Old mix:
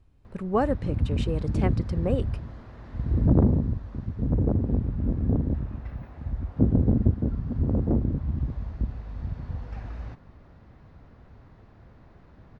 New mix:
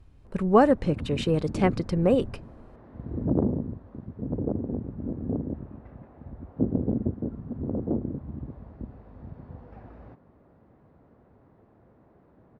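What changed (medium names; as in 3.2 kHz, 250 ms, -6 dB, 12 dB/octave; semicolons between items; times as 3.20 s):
speech +6.0 dB; background: add band-pass filter 420 Hz, Q 0.73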